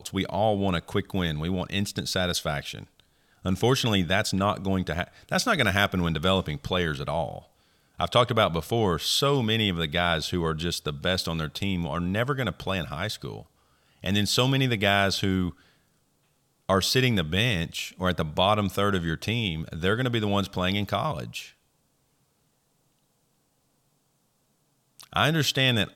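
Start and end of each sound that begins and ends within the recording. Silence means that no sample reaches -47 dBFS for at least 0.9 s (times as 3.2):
16.69–21.51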